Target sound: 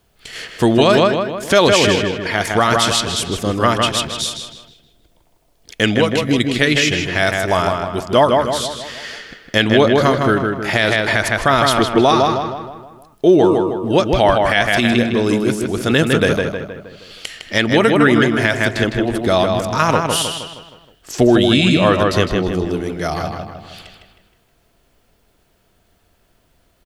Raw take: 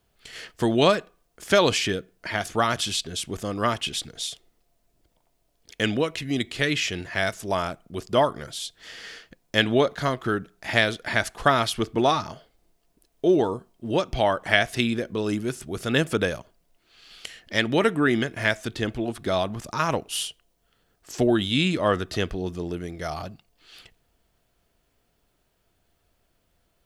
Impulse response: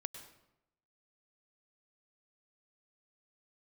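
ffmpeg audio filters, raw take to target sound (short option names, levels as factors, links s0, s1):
-filter_complex "[0:a]asplit=2[s0][s1];[s1]adelay=157,lowpass=f=3500:p=1,volume=0.631,asplit=2[s2][s3];[s3]adelay=157,lowpass=f=3500:p=1,volume=0.5,asplit=2[s4][s5];[s5]adelay=157,lowpass=f=3500:p=1,volume=0.5,asplit=2[s6][s7];[s7]adelay=157,lowpass=f=3500:p=1,volume=0.5,asplit=2[s8][s9];[s9]adelay=157,lowpass=f=3500:p=1,volume=0.5,asplit=2[s10][s11];[s11]adelay=157,lowpass=f=3500:p=1,volume=0.5[s12];[s2][s4][s6][s8][s10][s12]amix=inputs=6:normalize=0[s13];[s0][s13]amix=inputs=2:normalize=0,alimiter=level_in=3.16:limit=0.891:release=50:level=0:latency=1,volume=0.891"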